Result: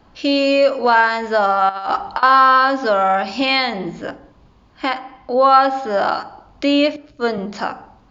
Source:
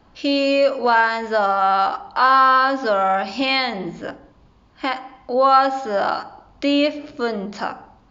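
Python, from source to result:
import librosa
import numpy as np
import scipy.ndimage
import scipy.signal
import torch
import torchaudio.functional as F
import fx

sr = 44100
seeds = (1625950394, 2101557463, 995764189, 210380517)

y = fx.over_compress(x, sr, threshold_db=-23.0, ratio=-0.5, at=(1.69, 2.23))
y = fx.lowpass(y, sr, hz=5600.0, slope=12, at=(4.94, 5.9))
y = fx.band_widen(y, sr, depth_pct=100, at=(6.96, 7.38))
y = y * librosa.db_to_amplitude(2.5)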